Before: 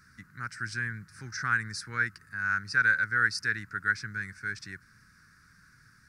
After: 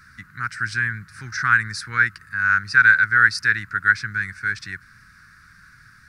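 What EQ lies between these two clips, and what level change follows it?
low-shelf EQ 130 Hz +10 dB
flat-topped bell 2,000 Hz +8.5 dB 2.3 octaves
high-shelf EQ 4,600 Hz +5 dB
+1.5 dB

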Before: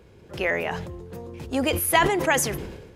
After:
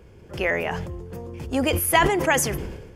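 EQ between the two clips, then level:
low-shelf EQ 71 Hz +8 dB
notch filter 3,900 Hz, Q 6.2
+1.0 dB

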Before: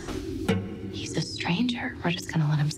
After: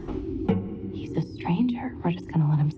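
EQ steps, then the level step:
graphic EQ with 15 bands 100 Hz −4 dB, 630 Hz −5 dB, 1,600 Hz −10 dB, 4,000 Hz −4 dB
dynamic equaliser 860 Hz, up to +5 dB, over −51 dBFS, Q 2.9
head-to-tape spacing loss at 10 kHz 40 dB
+4.0 dB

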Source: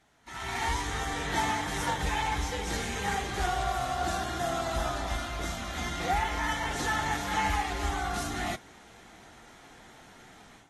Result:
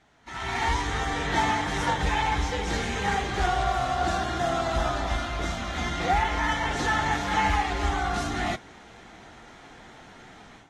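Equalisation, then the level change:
high-frequency loss of the air 71 metres
+5.0 dB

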